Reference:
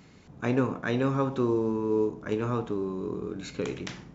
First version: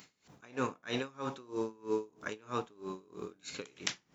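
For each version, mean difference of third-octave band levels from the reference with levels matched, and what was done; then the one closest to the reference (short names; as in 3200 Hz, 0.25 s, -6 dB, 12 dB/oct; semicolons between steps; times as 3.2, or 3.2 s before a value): 8.0 dB: tilt +3.5 dB/oct; dB-linear tremolo 3.1 Hz, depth 26 dB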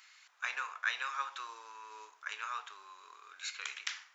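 17.0 dB: HPF 1300 Hz 24 dB/oct; gain +2.5 dB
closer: first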